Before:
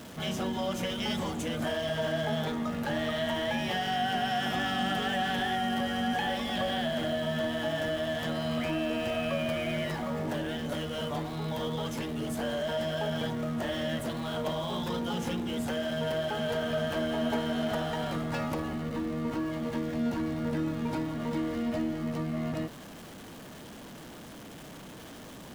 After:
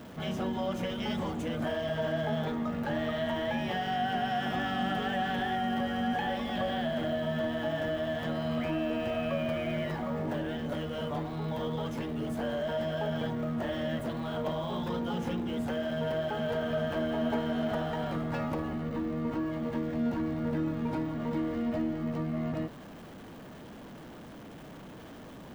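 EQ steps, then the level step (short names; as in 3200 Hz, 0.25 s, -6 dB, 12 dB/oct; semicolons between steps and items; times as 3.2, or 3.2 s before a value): bell 9500 Hz -11 dB 2.7 oct; 0.0 dB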